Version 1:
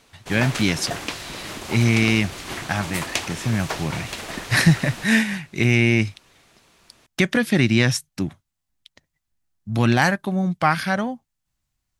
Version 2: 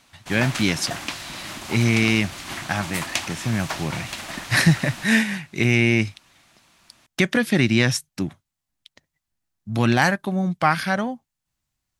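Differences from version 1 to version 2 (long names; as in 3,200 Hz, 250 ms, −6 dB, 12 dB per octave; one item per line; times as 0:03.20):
background: add parametric band 440 Hz −13 dB 0.45 octaves
master: add low-shelf EQ 73 Hz −7 dB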